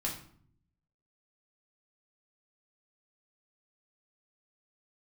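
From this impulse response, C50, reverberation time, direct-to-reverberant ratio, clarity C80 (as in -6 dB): 7.0 dB, 0.55 s, -3.0 dB, 11.0 dB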